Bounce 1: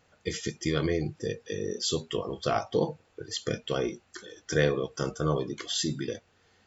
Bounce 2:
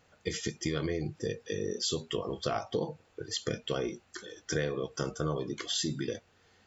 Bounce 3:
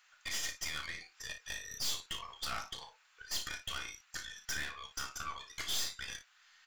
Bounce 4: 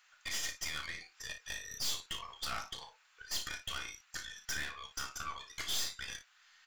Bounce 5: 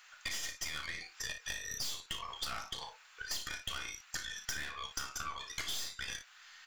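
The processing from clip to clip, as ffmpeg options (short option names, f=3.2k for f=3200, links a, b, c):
-af "acompressor=threshold=-28dB:ratio=5"
-filter_complex "[0:a]highpass=f=1.2k:w=0.5412,highpass=f=1.2k:w=1.3066,aeval=exprs='(tanh(112*val(0)+0.75)-tanh(0.75))/112':c=same,asplit=2[a][b];[b]aecho=0:1:33|57:0.335|0.251[c];[a][c]amix=inputs=2:normalize=0,volume=7dB"
-af anull
-af "acompressor=threshold=-44dB:ratio=6,volume=8dB"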